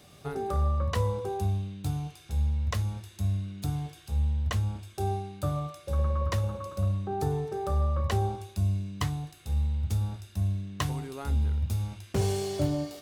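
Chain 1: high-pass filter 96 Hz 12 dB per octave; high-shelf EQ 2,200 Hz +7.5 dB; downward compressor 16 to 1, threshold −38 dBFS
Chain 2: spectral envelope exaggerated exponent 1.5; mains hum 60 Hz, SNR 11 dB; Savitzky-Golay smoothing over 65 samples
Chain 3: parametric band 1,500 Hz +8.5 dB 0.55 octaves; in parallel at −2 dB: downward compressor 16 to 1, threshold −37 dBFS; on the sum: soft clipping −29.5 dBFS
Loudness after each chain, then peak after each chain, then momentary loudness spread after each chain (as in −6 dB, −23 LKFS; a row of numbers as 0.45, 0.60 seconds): −42.5, −31.0, −34.5 LKFS; −20.5, −16.0, −29.5 dBFS; 2, 5, 3 LU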